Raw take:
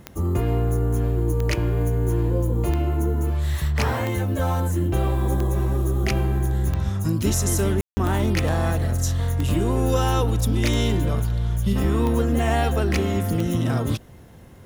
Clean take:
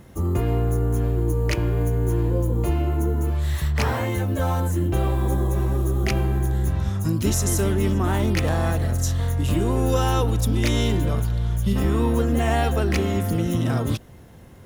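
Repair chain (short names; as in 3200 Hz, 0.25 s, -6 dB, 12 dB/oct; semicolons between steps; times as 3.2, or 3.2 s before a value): de-click; room tone fill 7.81–7.97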